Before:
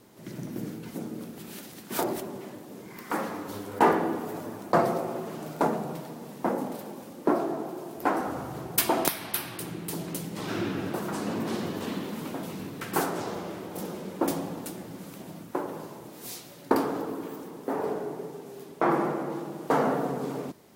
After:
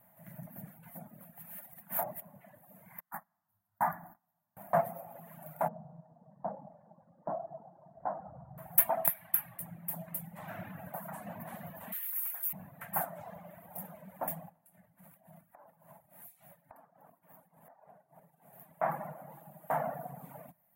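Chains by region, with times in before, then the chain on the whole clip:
3–4.57 gate -29 dBFS, range -24 dB + fixed phaser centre 1200 Hz, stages 4
5.68–8.58 Gaussian blur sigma 7.6 samples + bell 250 Hz -5 dB 0.23 oct
11.92–12.53 HPF 1300 Hz + tilt +4.5 dB/oct
14.49–18.53 bell 14000 Hz -7.5 dB 0.22 oct + compressor 12:1, threshold -41 dBFS + tremolo 3.5 Hz, depth 56%
whole clip: reverb removal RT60 1.2 s; EQ curve 110 Hz 0 dB, 170 Hz +5 dB, 390 Hz -24 dB, 640 Hz +9 dB, 1300 Hz -1 dB, 1800 Hz +5 dB, 5100 Hz -21 dB, 13000 Hz +14 dB; gain -10 dB

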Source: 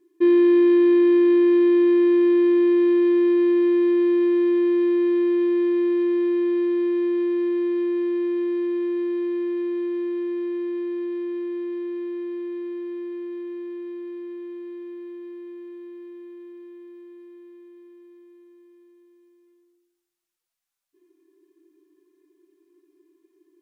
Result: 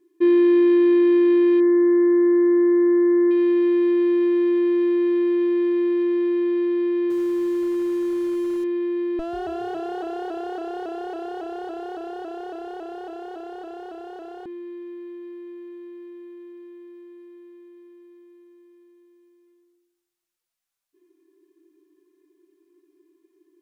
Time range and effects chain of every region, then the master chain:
1.6–3.31 brick-wall FIR low-pass 2200 Hz + fast leveller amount 50%
7.1–8.64 level-crossing sampler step -34.5 dBFS + LPF 2400 Hz 6 dB/oct + notch 710 Hz, Q 17
9.19–14.46 minimum comb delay 0.99 ms + frequency-shifting echo 0.135 s, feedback 57%, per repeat +33 Hz, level -8 dB + shaped vibrato saw up 3.6 Hz, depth 100 cents
whole clip: dry

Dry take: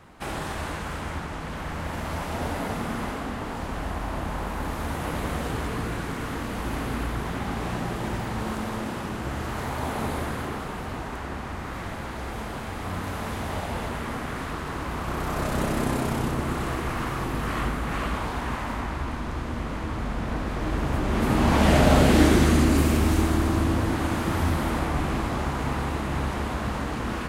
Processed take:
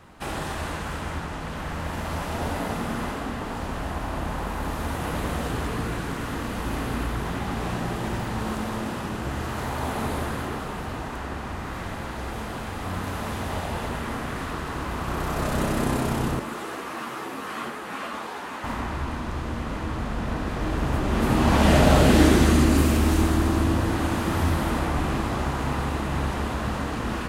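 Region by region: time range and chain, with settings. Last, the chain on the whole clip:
16.39–18.64 HPF 290 Hz + ensemble effect
whole clip: notch 2200 Hz, Q 22; de-hum 50.06 Hz, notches 40; gain +1.5 dB

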